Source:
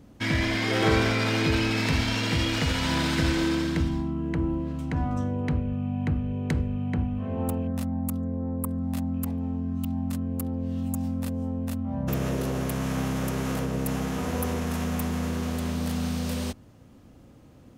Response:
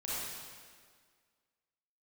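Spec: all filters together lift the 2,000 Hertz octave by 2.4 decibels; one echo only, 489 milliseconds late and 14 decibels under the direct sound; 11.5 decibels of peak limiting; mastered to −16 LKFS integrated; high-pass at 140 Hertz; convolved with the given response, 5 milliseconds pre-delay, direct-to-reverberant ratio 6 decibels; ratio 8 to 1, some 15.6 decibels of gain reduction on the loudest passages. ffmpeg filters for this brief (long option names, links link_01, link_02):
-filter_complex "[0:a]highpass=140,equalizer=frequency=2000:width_type=o:gain=3,acompressor=threshold=-35dB:ratio=8,alimiter=level_in=10dB:limit=-24dB:level=0:latency=1,volume=-10dB,aecho=1:1:489:0.2,asplit=2[link_01][link_02];[1:a]atrim=start_sample=2205,adelay=5[link_03];[link_02][link_03]afir=irnorm=-1:irlink=0,volume=-9.5dB[link_04];[link_01][link_04]amix=inputs=2:normalize=0,volume=25dB"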